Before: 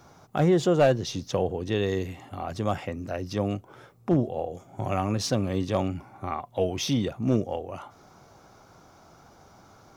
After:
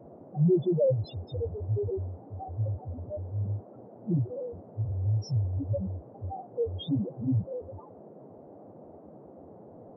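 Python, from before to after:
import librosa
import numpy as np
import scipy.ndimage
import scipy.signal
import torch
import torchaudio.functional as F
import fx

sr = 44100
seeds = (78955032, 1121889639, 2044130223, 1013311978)

y = fx.halfwave_hold(x, sr)
y = fx.spec_topn(y, sr, count=1)
y = fx.dmg_noise_band(y, sr, seeds[0], low_hz=160.0, high_hz=680.0, level_db=-51.0)
y = y * 10.0 ** (1.5 / 20.0)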